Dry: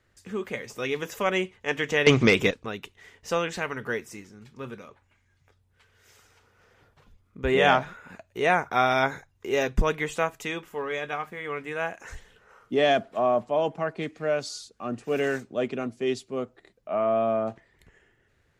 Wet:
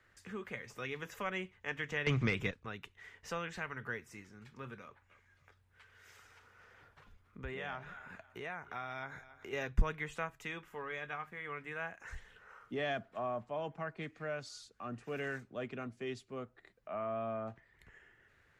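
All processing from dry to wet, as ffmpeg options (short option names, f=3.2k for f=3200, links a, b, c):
-filter_complex "[0:a]asettb=1/sr,asplit=3[a][b][c];[a]atrim=end=4.824[d];[b]atrim=start=4.82:end=9.53,asetpts=PTS-STARTPTS,afade=t=in:d=0.004:c=qsin,afade=t=out:st=4.706:d=0.004:c=qsin,acompressor=threshold=-36dB:ratio=2:attack=3.2:release=140:knee=1:detection=peak,aecho=1:1:275|550:0.1|0.029,atrim=end_sample=207711[e];[c]atrim=start=9.526[f];[d][e]acrossfade=d=0.004:c1=hsin:c2=qsin[g];[g][f]acrossfade=d=0.004:c1=qsin:c2=hsin,equalizer=f=1.6k:w=0.74:g=9,acrossover=split=160[h][i];[i]acompressor=threshold=-55dB:ratio=1.5[j];[h][j]amix=inputs=2:normalize=0,volume=-5dB"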